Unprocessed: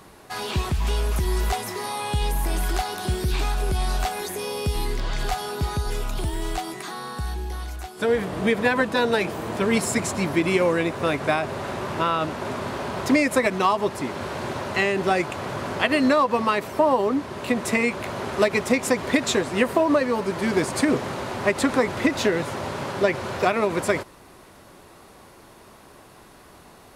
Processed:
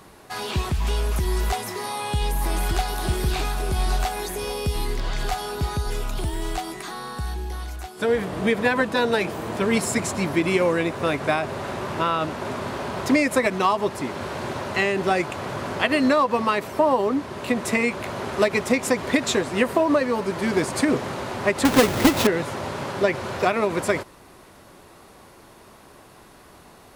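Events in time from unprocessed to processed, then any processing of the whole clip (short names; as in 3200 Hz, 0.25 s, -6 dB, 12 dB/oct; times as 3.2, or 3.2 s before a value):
1.84–2.85 echo throw 0.57 s, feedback 60%, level -6 dB
21.65–22.27 half-waves squared off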